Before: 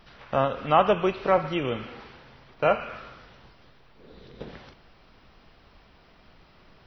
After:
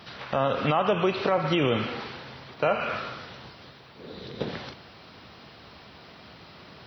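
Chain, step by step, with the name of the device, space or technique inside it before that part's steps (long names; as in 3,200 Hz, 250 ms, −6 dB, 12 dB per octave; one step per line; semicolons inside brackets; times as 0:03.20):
broadcast voice chain (high-pass filter 80 Hz 24 dB per octave; de-essing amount 75%; downward compressor 4 to 1, threshold −24 dBFS, peak gain reduction 9.5 dB; parametric band 4,100 Hz +5 dB 0.6 octaves; brickwall limiter −22 dBFS, peak gain reduction 9 dB)
level +8.5 dB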